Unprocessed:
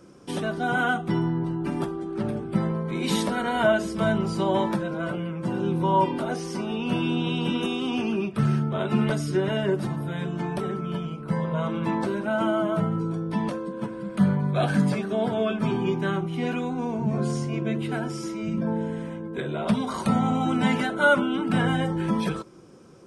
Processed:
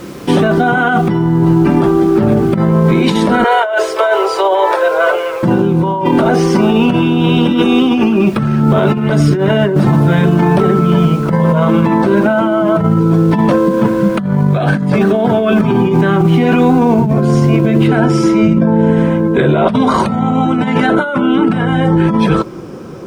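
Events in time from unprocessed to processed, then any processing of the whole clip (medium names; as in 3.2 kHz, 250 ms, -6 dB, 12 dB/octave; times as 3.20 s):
3.44–5.43 s: steep high-pass 400 Hz 72 dB/octave
7.37–8.72 s: comb 3.6 ms, depth 34%
17.87 s: noise floor step -54 dB -68 dB
whole clip: low-pass 2.2 kHz 6 dB/octave; compressor with a negative ratio -29 dBFS, ratio -1; loudness maximiser +20 dB; trim -1 dB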